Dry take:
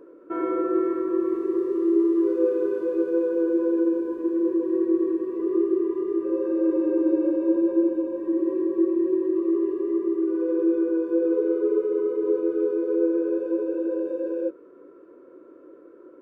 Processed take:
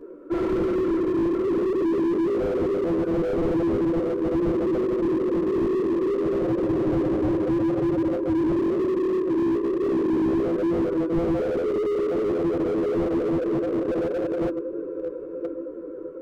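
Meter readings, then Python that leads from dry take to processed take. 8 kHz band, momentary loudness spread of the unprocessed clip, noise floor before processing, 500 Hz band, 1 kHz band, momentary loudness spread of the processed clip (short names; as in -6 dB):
n/a, 4 LU, -49 dBFS, +0.5 dB, +6.0 dB, 5 LU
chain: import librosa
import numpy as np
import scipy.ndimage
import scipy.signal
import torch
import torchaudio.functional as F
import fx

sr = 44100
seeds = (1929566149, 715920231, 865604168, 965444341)

p1 = 10.0 ** (-25.5 / 20.0) * np.tanh(x / 10.0 ** (-25.5 / 20.0))
p2 = x + (p1 * 10.0 ** (-9.0 / 20.0))
p3 = fx.low_shelf(p2, sr, hz=240.0, db=11.0)
p4 = fx.echo_filtered(p3, sr, ms=508, feedback_pct=84, hz=1300.0, wet_db=-15.0)
p5 = fx.dynamic_eq(p4, sr, hz=430.0, q=4.5, threshold_db=-32.0, ratio=4.0, max_db=4)
p6 = fx.chorus_voices(p5, sr, voices=4, hz=1.1, base_ms=14, depth_ms=3.8, mix_pct=60)
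p7 = p6 + fx.echo_feedback(p6, sr, ms=1016, feedback_pct=27, wet_db=-14.5, dry=0)
p8 = fx.slew_limit(p7, sr, full_power_hz=21.0)
y = p8 * 10.0 ** (3.5 / 20.0)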